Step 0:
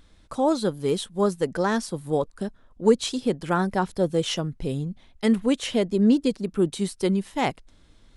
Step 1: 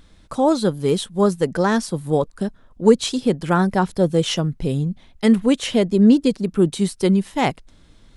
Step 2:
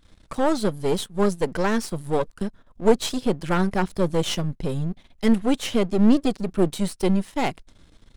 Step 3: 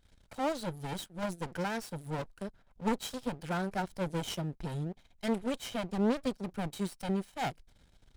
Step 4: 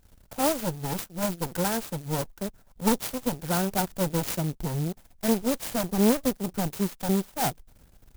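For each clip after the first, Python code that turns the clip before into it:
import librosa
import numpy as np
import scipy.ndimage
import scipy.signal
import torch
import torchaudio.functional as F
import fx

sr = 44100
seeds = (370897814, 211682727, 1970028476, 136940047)

y1 = fx.peak_eq(x, sr, hz=160.0, db=3.5, octaves=0.88)
y1 = F.gain(torch.from_numpy(y1), 4.5).numpy()
y2 = np.where(y1 < 0.0, 10.0 ** (-12.0 / 20.0) * y1, y1)
y3 = fx.lower_of_two(y2, sr, delay_ms=1.3)
y3 = fx.notch(y3, sr, hz=1100.0, q=22.0)
y3 = F.gain(torch.from_numpy(y3), -7.5).numpy()
y4 = fx.clock_jitter(y3, sr, seeds[0], jitter_ms=0.11)
y4 = F.gain(torch.from_numpy(y4), 7.5).numpy()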